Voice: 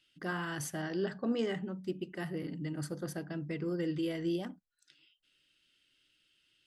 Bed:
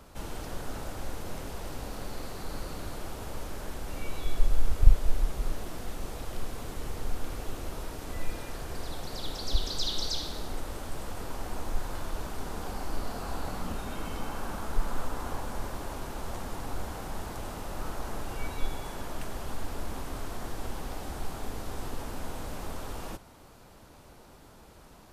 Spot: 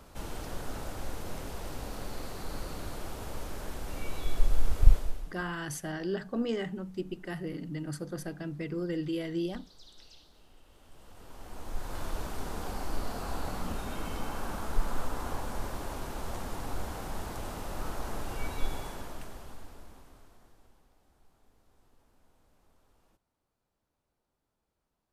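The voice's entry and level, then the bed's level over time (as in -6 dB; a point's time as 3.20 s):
5.10 s, +1.0 dB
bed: 4.95 s -1 dB
5.49 s -24 dB
10.61 s -24 dB
12.03 s -0.5 dB
18.79 s -0.5 dB
20.93 s -30 dB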